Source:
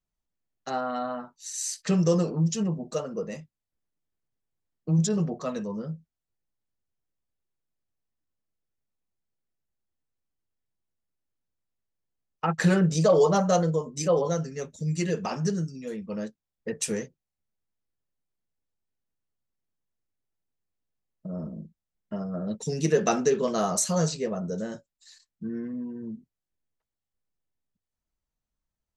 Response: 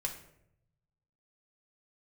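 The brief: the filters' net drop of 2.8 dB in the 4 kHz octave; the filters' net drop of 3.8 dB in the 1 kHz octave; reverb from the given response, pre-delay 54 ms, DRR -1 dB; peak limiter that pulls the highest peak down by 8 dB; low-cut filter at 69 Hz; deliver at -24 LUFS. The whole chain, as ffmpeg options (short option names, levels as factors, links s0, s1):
-filter_complex "[0:a]highpass=69,equalizer=f=1000:t=o:g=-5.5,equalizer=f=4000:t=o:g=-3.5,alimiter=limit=0.112:level=0:latency=1,asplit=2[s0][s1];[1:a]atrim=start_sample=2205,adelay=54[s2];[s1][s2]afir=irnorm=-1:irlink=0,volume=0.944[s3];[s0][s3]amix=inputs=2:normalize=0,volume=1.26"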